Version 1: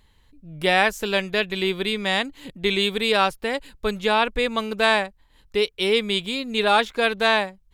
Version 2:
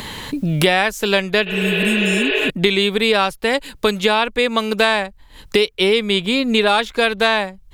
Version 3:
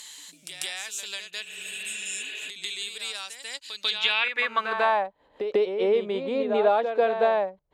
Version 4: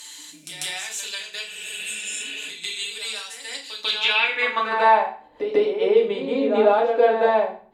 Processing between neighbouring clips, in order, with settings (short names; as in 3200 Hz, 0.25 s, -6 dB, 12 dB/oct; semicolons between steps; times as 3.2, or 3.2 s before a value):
spectral repair 1.49–2.47, 310–5100 Hz before; three-band squash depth 100%; gain +4 dB
reverse echo 0.144 s -7.5 dB; band-pass sweep 7300 Hz -> 590 Hz, 3.45–5.19
FDN reverb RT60 0.44 s, low-frequency decay 1.55×, high-frequency decay 0.9×, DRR -2 dB